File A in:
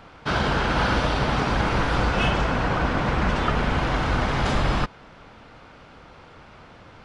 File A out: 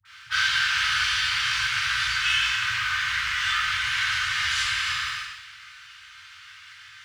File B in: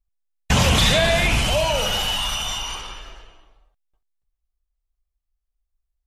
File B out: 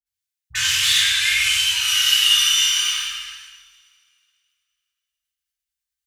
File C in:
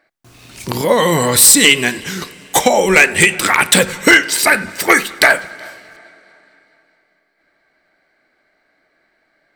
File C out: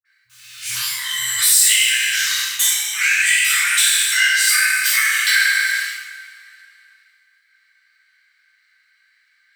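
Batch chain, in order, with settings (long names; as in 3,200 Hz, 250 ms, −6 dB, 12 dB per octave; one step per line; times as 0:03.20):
peak hold with a decay on every bin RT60 1.03 s
leveller curve on the samples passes 1
downward compressor 10 to 1, threshold −16 dBFS
high-pass filter 81 Hz 12 dB per octave
all-pass dispersion highs, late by 53 ms, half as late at 740 Hz
transient designer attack −2 dB, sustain +8 dB
inverse Chebyshev band-stop filter 270–570 Hz, stop band 70 dB
tilt shelving filter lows −10 dB, about 650 Hz
coupled-rooms reverb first 0.48 s, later 2.4 s, from −21 dB, DRR −6.5 dB
level −12 dB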